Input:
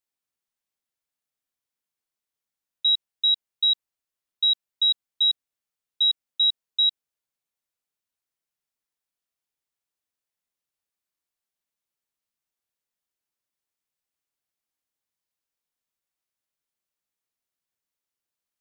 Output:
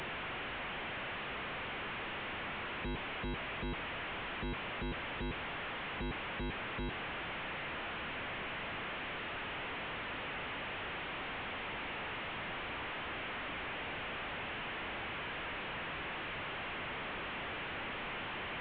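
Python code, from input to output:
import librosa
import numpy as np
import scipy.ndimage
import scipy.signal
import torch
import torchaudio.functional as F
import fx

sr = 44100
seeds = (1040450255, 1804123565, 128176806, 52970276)

y = fx.delta_mod(x, sr, bps=16000, step_db=-34.0)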